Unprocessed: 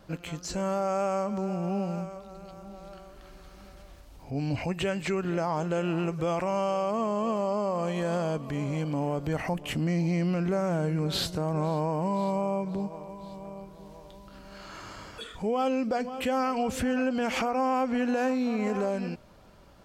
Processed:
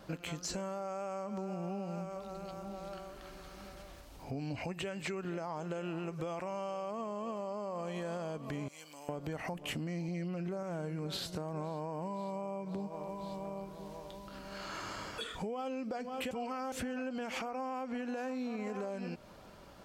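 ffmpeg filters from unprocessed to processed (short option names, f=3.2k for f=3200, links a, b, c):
-filter_complex "[0:a]asettb=1/sr,asplit=3[a][b][c];[a]atrim=end=8.684[d];[b]atrim=start=8.68:end=9.09,asetpts=PTS-STARTPTS,afade=t=in:d=0.004:c=qsin,afade=t=out:st=0.406:d=0.004:c=qsin,aderivative[e];[c]atrim=start=9.086[f];[d][e]acrossfade=d=0.004:c1=hsin:c2=qsin[g];[g][f]acrossfade=d=0.004:c1=qsin:c2=hsin,asettb=1/sr,asplit=3[h][i][j];[h]atrim=end=10.084[k];[i]atrim=start=10.08:end=10.63,asetpts=PTS-STARTPTS,afade=t=in:d=0.004:c=qsin,afade=t=out:st=0.546:d=0.004:c=qsin,aecho=1:1:5.4:0.75,atrim=end_sample=24255[l];[j]atrim=start=10.626[m];[k][l]acrossfade=d=0.004:c1=hsin:c2=qsin[n];[n][m]acrossfade=d=0.004:c1=qsin:c2=hsin,asplit=3[o][p][q];[o]atrim=end=16.312[r];[p]atrim=start=16.308:end=16.722,asetpts=PTS-STARTPTS,areverse[s];[q]atrim=start=16.718[t];[r][s]acrossfade=d=0.004:c1=hsin:c2=hsin[u];[u][t]acrossfade=d=0.004:c1=hsin:c2=hsin,alimiter=limit=-23dB:level=0:latency=1:release=320,lowshelf=f=110:g=-8,acompressor=threshold=-38dB:ratio=6,volume=2dB"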